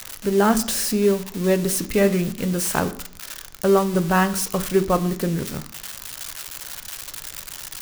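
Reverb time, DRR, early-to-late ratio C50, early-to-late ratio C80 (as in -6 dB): 0.60 s, 11.0 dB, 16.0 dB, 19.0 dB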